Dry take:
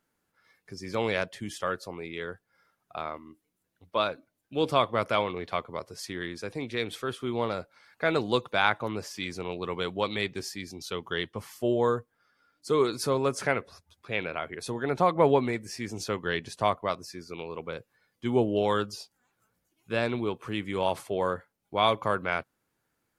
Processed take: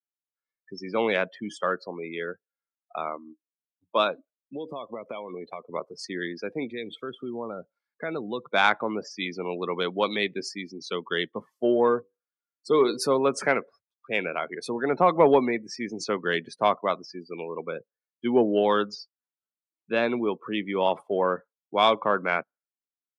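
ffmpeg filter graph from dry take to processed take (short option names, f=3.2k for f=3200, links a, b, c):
-filter_complex "[0:a]asettb=1/sr,asplit=3[a][b][c];[a]atrim=end=4.114[d];[b]atrim=start=4.11:end=5.74,asetpts=PTS-STARTPTS,afade=t=in:d=0.004:c=qsin,afade=t=out:st=1.626:d=0.004:c=qsin,equalizer=f=1.4k:t=o:w=0.38:g=-9.5,acompressor=threshold=-34dB:ratio=10:attack=3.2:release=140:knee=1:detection=peak[e];[c]atrim=start=5.736[f];[d][e]acrossfade=d=0.004:c1=hsin:c2=qsin[g];[g][f]acrossfade=d=0.004:c1=qsin:c2=hsin,asettb=1/sr,asplit=3[h][i][j];[h]atrim=end=6.704[k];[i]atrim=start=6.7:end=8.53,asetpts=PTS-STARTPTS,afade=t=in:d=0.004:c=qsin,afade=t=out:st=1.826:d=0.004:c=qsin,lowshelf=f=180:g=8,acompressor=threshold=-39dB:ratio=2:attack=3.2:release=140:knee=1:detection=peak[l];[j]atrim=start=8.526[m];[k][l]acrossfade=d=0.004:c1=hsin:c2=qsin[n];[n][m]acrossfade=d=0.004:c1=qsin:c2=hsin,asettb=1/sr,asplit=3[o][p][q];[o]atrim=end=11.874[r];[p]atrim=start=11.87:end=13.07,asetpts=PTS-STARTPTS,afade=t=in:d=0.004:c=qsin,afade=t=out:st=1.196:d=0.004:c=qsin,bandreject=f=1.3k:w=12,bandreject=f=97.2:t=h:w=4,bandreject=f=194.4:t=h:w=4,bandreject=f=291.6:t=h:w=4,bandreject=f=388.8:t=h:w=4,bandreject=f=486:t=h:w=4[s];[q]atrim=start=13.066[t];[r][s]acrossfade=d=0.004:c1=hsin:c2=qsin[u];[u][t]acrossfade=d=0.004:c1=qsin:c2=hsin,afftdn=nr=36:nf=-40,highpass=f=180:w=0.5412,highpass=f=180:w=1.3066,acontrast=72,volume=-2.5dB"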